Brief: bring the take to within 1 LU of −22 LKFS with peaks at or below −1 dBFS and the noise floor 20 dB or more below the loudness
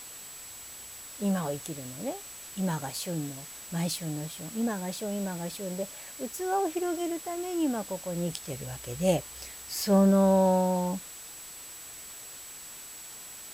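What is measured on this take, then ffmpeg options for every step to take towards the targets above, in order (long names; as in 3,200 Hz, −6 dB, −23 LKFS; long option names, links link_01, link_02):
interfering tone 7,800 Hz; level of the tone −45 dBFS; background noise floor −45 dBFS; target noise floor −50 dBFS; integrated loudness −30.0 LKFS; sample peak −11.0 dBFS; target loudness −22.0 LKFS
→ -af "bandreject=frequency=7800:width=30"
-af "afftdn=noise_reduction=6:noise_floor=-45"
-af "volume=8dB"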